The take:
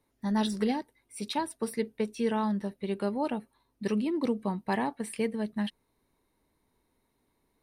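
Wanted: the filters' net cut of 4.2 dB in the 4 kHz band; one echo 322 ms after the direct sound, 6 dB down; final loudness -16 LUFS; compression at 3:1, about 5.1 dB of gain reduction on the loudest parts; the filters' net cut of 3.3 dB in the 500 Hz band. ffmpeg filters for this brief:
-af "equalizer=f=500:t=o:g=-4,equalizer=f=4000:t=o:g=-5,acompressor=threshold=0.0251:ratio=3,aecho=1:1:322:0.501,volume=10.6"

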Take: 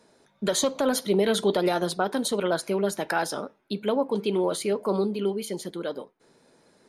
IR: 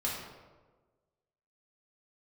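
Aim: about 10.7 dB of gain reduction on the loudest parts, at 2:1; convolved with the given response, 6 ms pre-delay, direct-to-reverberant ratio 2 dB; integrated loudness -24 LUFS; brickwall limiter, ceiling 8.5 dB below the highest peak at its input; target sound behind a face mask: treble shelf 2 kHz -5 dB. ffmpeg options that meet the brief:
-filter_complex "[0:a]acompressor=threshold=0.0112:ratio=2,alimiter=level_in=1.88:limit=0.0631:level=0:latency=1,volume=0.531,asplit=2[s0][s1];[1:a]atrim=start_sample=2205,adelay=6[s2];[s1][s2]afir=irnorm=-1:irlink=0,volume=0.447[s3];[s0][s3]amix=inputs=2:normalize=0,highshelf=f=2000:g=-5,volume=4.73"

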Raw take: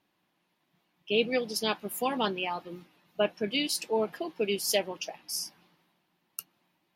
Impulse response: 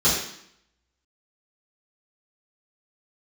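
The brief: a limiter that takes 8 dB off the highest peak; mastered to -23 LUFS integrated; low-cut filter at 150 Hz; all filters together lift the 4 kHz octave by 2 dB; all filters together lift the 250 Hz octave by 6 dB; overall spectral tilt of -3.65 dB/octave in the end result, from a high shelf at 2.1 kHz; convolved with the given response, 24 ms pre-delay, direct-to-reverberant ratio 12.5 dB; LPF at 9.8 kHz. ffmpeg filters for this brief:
-filter_complex "[0:a]highpass=150,lowpass=9800,equalizer=f=250:t=o:g=8,highshelf=f=2100:g=-5,equalizer=f=4000:t=o:g=8.5,alimiter=limit=0.106:level=0:latency=1,asplit=2[s0][s1];[1:a]atrim=start_sample=2205,adelay=24[s2];[s1][s2]afir=irnorm=-1:irlink=0,volume=0.0335[s3];[s0][s3]amix=inputs=2:normalize=0,volume=2.51"

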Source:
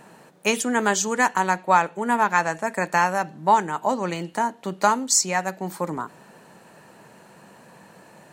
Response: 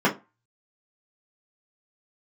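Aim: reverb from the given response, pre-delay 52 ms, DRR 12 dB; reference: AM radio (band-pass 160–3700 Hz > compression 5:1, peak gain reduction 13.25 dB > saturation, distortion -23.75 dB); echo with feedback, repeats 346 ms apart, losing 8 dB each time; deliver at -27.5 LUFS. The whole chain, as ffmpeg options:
-filter_complex "[0:a]aecho=1:1:346|692|1038|1384|1730:0.398|0.159|0.0637|0.0255|0.0102,asplit=2[s0][s1];[1:a]atrim=start_sample=2205,adelay=52[s2];[s1][s2]afir=irnorm=-1:irlink=0,volume=0.0355[s3];[s0][s3]amix=inputs=2:normalize=0,highpass=160,lowpass=3700,acompressor=threshold=0.0501:ratio=5,asoftclip=threshold=0.158,volume=1.5"

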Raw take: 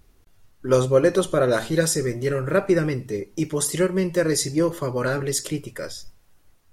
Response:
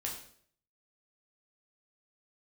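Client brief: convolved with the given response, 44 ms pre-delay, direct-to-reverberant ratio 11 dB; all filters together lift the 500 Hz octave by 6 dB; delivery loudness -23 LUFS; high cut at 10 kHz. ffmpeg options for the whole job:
-filter_complex "[0:a]lowpass=10000,equalizer=f=500:t=o:g=7,asplit=2[s0][s1];[1:a]atrim=start_sample=2205,adelay=44[s2];[s1][s2]afir=irnorm=-1:irlink=0,volume=0.251[s3];[s0][s3]amix=inputs=2:normalize=0,volume=0.531"

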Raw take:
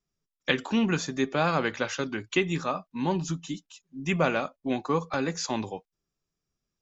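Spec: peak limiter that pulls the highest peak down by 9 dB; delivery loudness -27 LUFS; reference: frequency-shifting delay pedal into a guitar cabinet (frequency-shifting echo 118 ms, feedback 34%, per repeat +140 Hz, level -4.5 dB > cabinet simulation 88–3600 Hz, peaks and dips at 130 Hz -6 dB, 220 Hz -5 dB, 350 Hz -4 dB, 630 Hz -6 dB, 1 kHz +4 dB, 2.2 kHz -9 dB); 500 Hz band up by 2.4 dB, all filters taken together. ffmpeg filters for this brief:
-filter_complex "[0:a]equalizer=f=500:t=o:g=6.5,alimiter=limit=0.2:level=0:latency=1,asplit=5[s0][s1][s2][s3][s4];[s1]adelay=118,afreqshift=140,volume=0.596[s5];[s2]adelay=236,afreqshift=280,volume=0.202[s6];[s3]adelay=354,afreqshift=420,volume=0.0692[s7];[s4]adelay=472,afreqshift=560,volume=0.0234[s8];[s0][s5][s6][s7][s8]amix=inputs=5:normalize=0,highpass=88,equalizer=f=130:t=q:w=4:g=-6,equalizer=f=220:t=q:w=4:g=-5,equalizer=f=350:t=q:w=4:g=-4,equalizer=f=630:t=q:w=4:g=-6,equalizer=f=1000:t=q:w=4:g=4,equalizer=f=2200:t=q:w=4:g=-9,lowpass=f=3600:w=0.5412,lowpass=f=3600:w=1.3066,volume=1.26"

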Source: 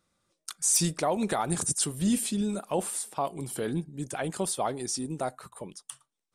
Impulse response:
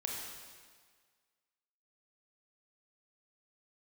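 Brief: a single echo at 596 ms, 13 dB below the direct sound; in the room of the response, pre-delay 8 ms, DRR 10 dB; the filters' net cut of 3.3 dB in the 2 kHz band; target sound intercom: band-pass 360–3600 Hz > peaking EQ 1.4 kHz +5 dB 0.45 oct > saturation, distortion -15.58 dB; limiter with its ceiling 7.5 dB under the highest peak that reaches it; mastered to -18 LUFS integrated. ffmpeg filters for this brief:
-filter_complex "[0:a]equalizer=f=2000:t=o:g=-8,alimiter=limit=0.0891:level=0:latency=1,aecho=1:1:596:0.224,asplit=2[s0][s1];[1:a]atrim=start_sample=2205,adelay=8[s2];[s1][s2]afir=irnorm=-1:irlink=0,volume=0.251[s3];[s0][s3]amix=inputs=2:normalize=0,highpass=360,lowpass=3600,equalizer=f=1400:t=o:w=0.45:g=5,asoftclip=threshold=0.0531,volume=10"

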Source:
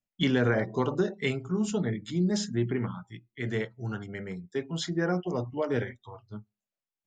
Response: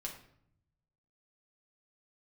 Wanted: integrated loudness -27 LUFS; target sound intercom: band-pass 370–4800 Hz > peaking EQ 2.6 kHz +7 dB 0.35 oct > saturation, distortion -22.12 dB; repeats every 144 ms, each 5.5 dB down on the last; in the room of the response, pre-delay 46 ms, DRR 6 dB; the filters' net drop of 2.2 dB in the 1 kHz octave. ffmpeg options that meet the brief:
-filter_complex "[0:a]equalizer=f=1000:t=o:g=-3,aecho=1:1:144|288|432|576|720|864|1008:0.531|0.281|0.149|0.079|0.0419|0.0222|0.0118,asplit=2[s0][s1];[1:a]atrim=start_sample=2205,adelay=46[s2];[s1][s2]afir=irnorm=-1:irlink=0,volume=0.596[s3];[s0][s3]amix=inputs=2:normalize=0,highpass=370,lowpass=4800,equalizer=f=2600:t=o:w=0.35:g=7,asoftclip=threshold=0.119,volume=1.88"

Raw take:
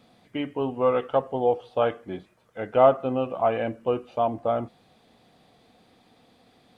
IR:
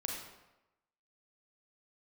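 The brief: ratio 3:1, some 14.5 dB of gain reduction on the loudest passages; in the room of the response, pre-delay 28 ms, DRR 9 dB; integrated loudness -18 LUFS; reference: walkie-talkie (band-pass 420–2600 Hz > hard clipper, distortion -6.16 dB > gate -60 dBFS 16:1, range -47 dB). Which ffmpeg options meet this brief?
-filter_complex "[0:a]acompressor=threshold=0.0251:ratio=3,asplit=2[s0][s1];[1:a]atrim=start_sample=2205,adelay=28[s2];[s1][s2]afir=irnorm=-1:irlink=0,volume=0.299[s3];[s0][s3]amix=inputs=2:normalize=0,highpass=420,lowpass=2600,asoftclip=type=hard:threshold=0.0168,agate=range=0.00447:threshold=0.001:ratio=16,volume=14.1"

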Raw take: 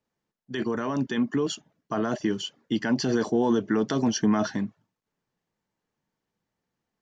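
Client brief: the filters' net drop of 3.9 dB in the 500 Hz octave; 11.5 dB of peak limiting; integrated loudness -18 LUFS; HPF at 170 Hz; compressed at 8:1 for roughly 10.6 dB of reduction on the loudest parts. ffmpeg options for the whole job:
-af "highpass=170,equalizer=f=500:t=o:g=-5,acompressor=threshold=0.0251:ratio=8,volume=16.8,alimiter=limit=0.376:level=0:latency=1"

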